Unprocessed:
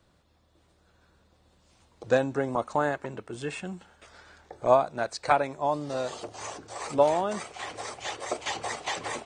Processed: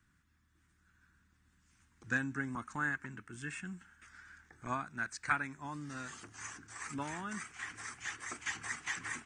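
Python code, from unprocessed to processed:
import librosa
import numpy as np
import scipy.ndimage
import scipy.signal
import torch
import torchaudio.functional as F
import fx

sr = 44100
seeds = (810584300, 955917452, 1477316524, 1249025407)

y = fx.curve_eq(x, sr, hz=(270.0, 570.0, 1600.0, 4100.0, 6100.0), db=(0, -24, 8, -9, 2))
y = y * librosa.db_to_amplitude(-6.5)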